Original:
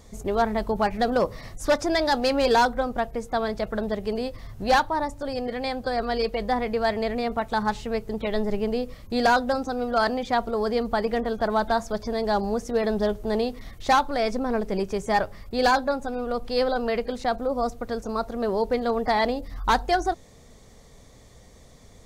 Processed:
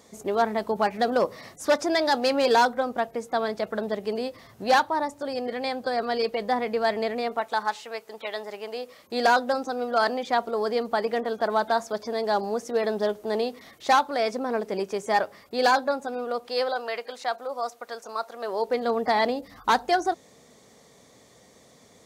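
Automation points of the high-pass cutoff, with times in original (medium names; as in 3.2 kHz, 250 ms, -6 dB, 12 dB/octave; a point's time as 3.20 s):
7.04 s 230 Hz
7.80 s 720 Hz
8.68 s 720 Hz
9.27 s 290 Hz
16.18 s 290 Hz
16.90 s 720 Hz
18.40 s 720 Hz
18.93 s 200 Hz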